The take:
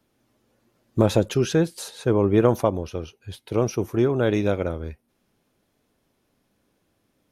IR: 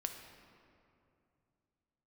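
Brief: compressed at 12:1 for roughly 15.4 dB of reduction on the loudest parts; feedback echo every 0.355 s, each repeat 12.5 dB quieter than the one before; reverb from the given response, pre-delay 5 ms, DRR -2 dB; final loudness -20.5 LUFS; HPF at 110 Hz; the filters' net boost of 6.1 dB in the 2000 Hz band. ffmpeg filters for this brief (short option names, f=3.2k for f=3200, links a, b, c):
-filter_complex "[0:a]highpass=110,equalizer=f=2k:t=o:g=8.5,acompressor=threshold=-28dB:ratio=12,aecho=1:1:355|710|1065:0.237|0.0569|0.0137,asplit=2[a][b];[1:a]atrim=start_sample=2205,adelay=5[c];[b][c]afir=irnorm=-1:irlink=0,volume=2.5dB[d];[a][d]amix=inputs=2:normalize=0,volume=10dB"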